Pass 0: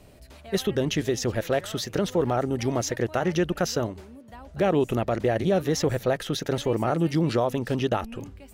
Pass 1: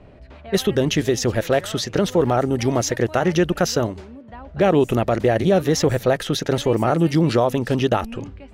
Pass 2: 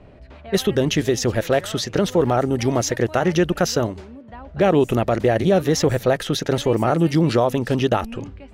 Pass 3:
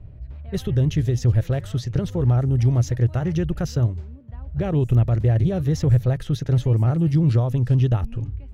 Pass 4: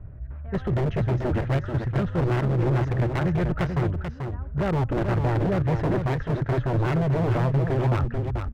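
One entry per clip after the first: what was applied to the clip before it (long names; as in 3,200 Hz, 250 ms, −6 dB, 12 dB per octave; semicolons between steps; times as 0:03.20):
low-pass that shuts in the quiet parts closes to 2,000 Hz, open at −23.5 dBFS; level +6 dB
no processing that can be heard
drawn EQ curve 130 Hz 0 dB, 200 Hz −15 dB, 690 Hz −22 dB; level +9 dB
low-pass with resonance 1,500 Hz, resonance Q 2.6; wave folding −18.5 dBFS; single-tap delay 437 ms −6.5 dB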